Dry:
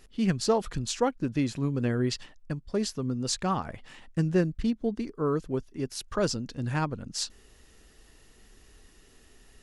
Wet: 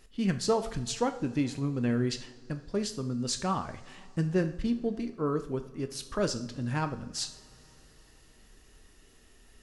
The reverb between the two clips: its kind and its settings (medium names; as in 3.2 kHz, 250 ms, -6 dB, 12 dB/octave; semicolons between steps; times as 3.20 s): two-slope reverb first 0.52 s, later 4.4 s, from -22 dB, DRR 7.5 dB; trim -2.5 dB